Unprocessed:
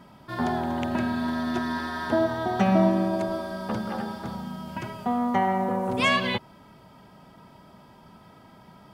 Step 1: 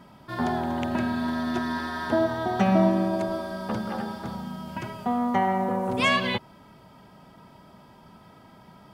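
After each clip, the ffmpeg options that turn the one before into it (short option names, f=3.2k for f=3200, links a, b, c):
-af anull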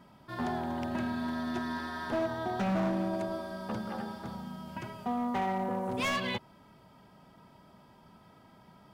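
-af "asoftclip=type=hard:threshold=-20dB,volume=-6.5dB"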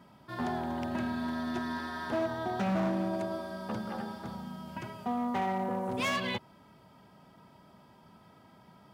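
-af "highpass=57"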